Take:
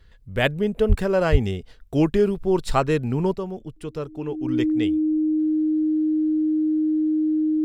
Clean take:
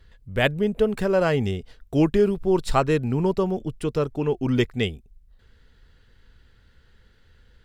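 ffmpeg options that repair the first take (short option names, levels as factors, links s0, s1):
-filter_complex "[0:a]bandreject=f=310:w=30,asplit=3[s0][s1][s2];[s0]afade=t=out:st=0.88:d=0.02[s3];[s1]highpass=f=140:w=0.5412,highpass=f=140:w=1.3066,afade=t=in:st=0.88:d=0.02,afade=t=out:st=1:d=0.02[s4];[s2]afade=t=in:st=1:d=0.02[s5];[s3][s4][s5]amix=inputs=3:normalize=0,asplit=3[s6][s7][s8];[s6]afade=t=out:st=1.31:d=0.02[s9];[s7]highpass=f=140:w=0.5412,highpass=f=140:w=1.3066,afade=t=in:st=1.31:d=0.02,afade=t=out:st=1.43:d=0.02[s10];[s8]afade=t=in:st=1.43:d=0.02[s11];[s9][s10][s11]amix=inputs=3:normalize=0,asetnsamples=n=441:p=0,asendcmd='3.36 volume volume 6.5dB',volume=1"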